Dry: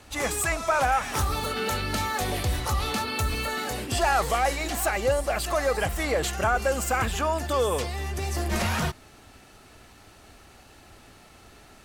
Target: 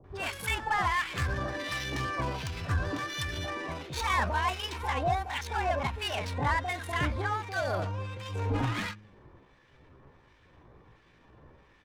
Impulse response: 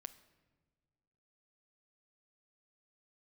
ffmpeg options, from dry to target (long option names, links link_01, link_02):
-filter_complex "[0:a]bandreject=frequency=78.58:width_type=h:width=4,bandreject=frequency=157.16:width_type=h:width=4,bandreject=frequency=235.74:width_type=h:width=4,acrossover=split=1100[link_01][link_02];[link_01]aeval=exprs='val(0)*(1-0.7/2+0.7/2*cos(2*PI*1.4*n/s))':channel_layout=same[link_03];[link_02]aeval=exprs='val(0)*(1-0.7/2-0.7/2*cos(2*PI*1.4*n/s))':channel_layout=same[link_04];[link_03][link_04]amix=inputs=2:normalize=0,asetrate=58866,aresample=44100,atempo=0.749154,adynamicsmooth=sensitivity=5.5:basefreq=1900,acrossover=split=750[link_05][link_06];[link_06]adelay=40[link_07];[link_05][link_07]amix=inputs=2:normalize=0"